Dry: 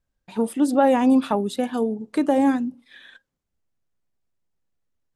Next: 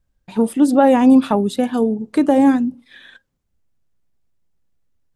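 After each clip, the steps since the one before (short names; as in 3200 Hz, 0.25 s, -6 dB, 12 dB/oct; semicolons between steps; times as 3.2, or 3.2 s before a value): low shelf 210 Hz +7.5 dB; gain +3.5 dB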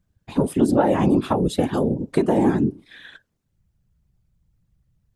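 compressor 6:1, threshold -15 dBFS, peak gain reduction 8 dB; whisperiser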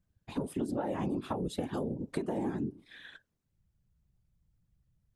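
compressor 4:1, threshold -24 dBFS, peak gain reduction 10.5 dB; gain -7.5 dB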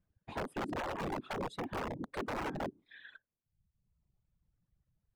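wrapped overs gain 28.5 dB; overdrive pedal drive 4 dB, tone 1100 Hz, clips at -28.5 dBFS; reverb removal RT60 1.1 s; gain +3 dB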